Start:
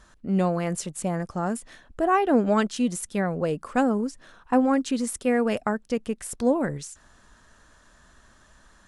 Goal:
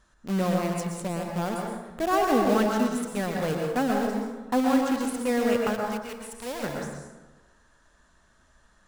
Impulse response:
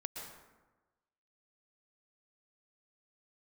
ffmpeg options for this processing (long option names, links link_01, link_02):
-filter_complex "[0:a]asplit=2[link_01][link_02];[link_02]acrusher=bits=3:mix=0:aa=0.000001,volume=-3.5dB[link_03];[link_01][link_03]amix=inputs=2:normalize=0,asplit=3[link_04][link_05][link_06];[link_04]afade=type=out:start_time=5.8:duration=0.02[link_07];[link_05]equalizer=frequency=250:width=0.44:gain=-14,afade=type=in:start_time=5.8:duration=0.02,afade=type=out:start_time=6.62:duration=0.02[link_08];[link_06]afade=type=in:start_time=6.62:duration=0.02[link_09];[link_07][link_08][link_09]amix=inputs=3:normalize=0[link_10];[1:a]atrim=start_sample=2205[link_11];[link_10][link_11]afir=irnorm=-1:irlink=0,volume=-5dB"